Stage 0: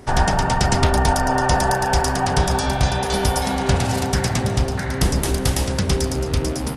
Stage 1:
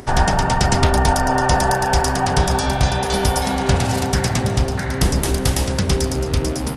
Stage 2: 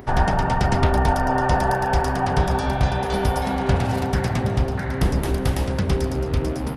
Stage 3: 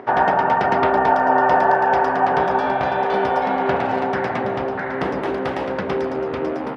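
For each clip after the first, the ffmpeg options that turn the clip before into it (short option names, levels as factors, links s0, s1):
-af "acompressor=mode=upward:threshold=0.0158:ratio=2.5,volume=1.19"
-af "equalizer=f=7500:t=o:w=1.8:g=-13,volume=0.75"
-af "highpass=360,lowpass=2100,volume=2.11"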